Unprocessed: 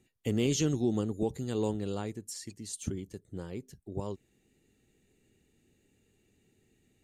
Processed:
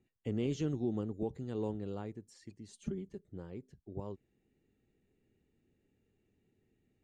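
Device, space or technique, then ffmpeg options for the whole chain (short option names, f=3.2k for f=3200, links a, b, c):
through cloth: -filter_complex "[0:a]lowpass=9k,highshelf=f=3.7k:g=-17,asettb=1/sr,asplit=3[a][b][c];[a]atrim=end=2.684[d];[b]atrim=start=2.68:end=3.28,asetpts=PTS-STARTPTS,afade=t=in:d=0.004:c=qsin,afade=t=out:st=0.596:d=0.004:c=qsin,aecho=1:1:5:0.92,atrim=end_sample=26460[e];[c]atrim=start=3.276[f];[d][e]acrossfade=d=0.004:c1=hsin:c2=qsin[g];[g][f]acrossfade=d=0.004:c1=qsin:c2=hsin,volume=-5.5dB"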